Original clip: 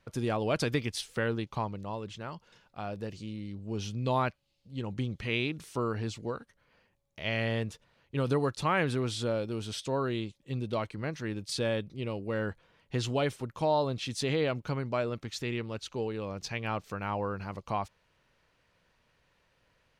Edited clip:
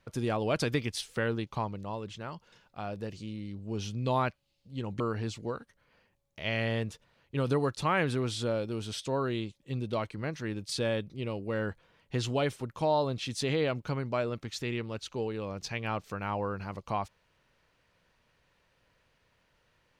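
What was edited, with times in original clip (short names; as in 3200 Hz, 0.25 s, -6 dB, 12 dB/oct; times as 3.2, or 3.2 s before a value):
5–5.8 cut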